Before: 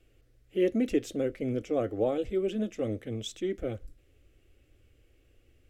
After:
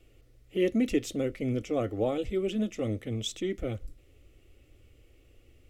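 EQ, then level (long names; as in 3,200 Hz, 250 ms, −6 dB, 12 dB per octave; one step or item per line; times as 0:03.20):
notch filter 1,600 Hz, Q 6.5
dynamic equaliser 480 Hz, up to −6 dB, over −41 dBFS, Q 0.7
+4.5 dB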